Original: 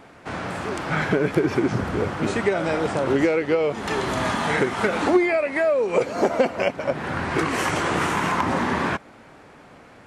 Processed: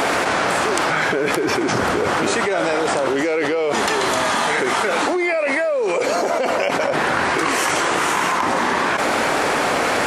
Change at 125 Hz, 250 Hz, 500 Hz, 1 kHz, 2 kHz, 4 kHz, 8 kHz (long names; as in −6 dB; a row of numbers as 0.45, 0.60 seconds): −4.0, +0.5, +3.0, +7.0, +7.0, +9.5, +12.0 decibels